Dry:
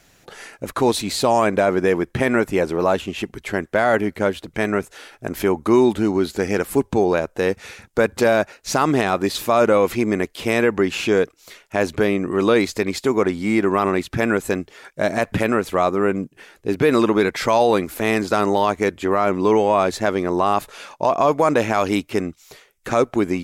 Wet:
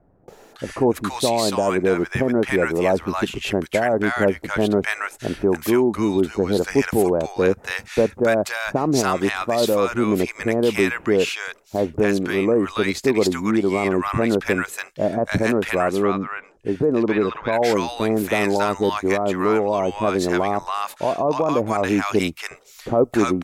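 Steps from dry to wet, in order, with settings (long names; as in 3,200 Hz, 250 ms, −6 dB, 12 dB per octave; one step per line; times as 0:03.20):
speech leveller within 5 dB 0.5 s
0:15.61–0:17.24: treble cut that deepens with the level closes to 2,900 Hz, closed at −15.5 dBFS
multiband delay without the direct sound lows, highs 280 ms, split 960 Hz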